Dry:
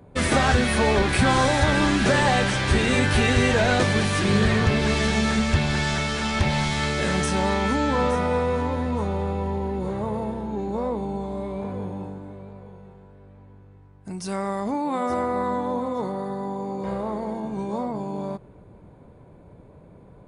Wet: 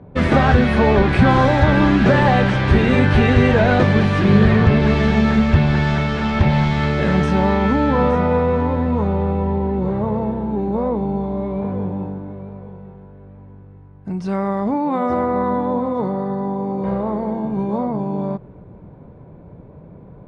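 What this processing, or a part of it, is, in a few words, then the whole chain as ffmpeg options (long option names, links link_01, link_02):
phone in a pocket: -af "lowpass=3900,equalizer=frequency=160:width_type=o:width=0.9:gain=4,highshelf=frequency=2200:gain=-9,volume=6dB"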